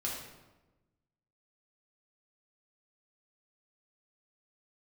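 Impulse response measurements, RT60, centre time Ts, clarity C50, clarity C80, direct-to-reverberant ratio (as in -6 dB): 1.1 s, 55 ms, 2.0 dB, 5.0 dB, -4.0 dB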